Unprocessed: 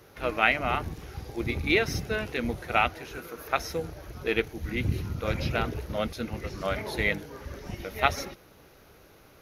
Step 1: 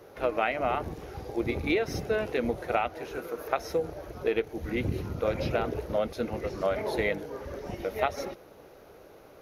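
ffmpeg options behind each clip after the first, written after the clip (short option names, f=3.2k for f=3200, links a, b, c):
-af "equalizer=f=540:t=o:w=2:g=11.5,acompressor=threshold=-19dB:ratio=6,volume=-4dB"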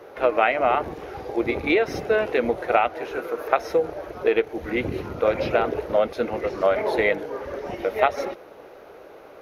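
-af "bass=f=250:g=-11,treble=f=4k:g=-10,volume=8.5dB"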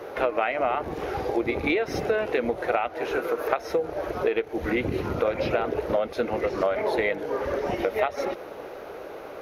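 -af "acompressor=threshold=-29dB:ratio=4,volume=6dB"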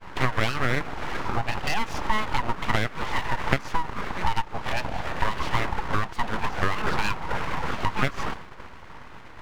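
-af "highpass=200,equalizer=f=460:t=q:w=4:g=4,equalizer=f=980:t=q:w=4:g=9,equalizer=f=1.5k:t=q:w=4:g=6,lowpass=f=6.7k:w=0.5412,lowpass=f=6.7k:w=1.3066,agate=range=-33dB:threshold=-30dB:ratio=3:detection=peak,aeval=exprs='abs(val(0))':c=same"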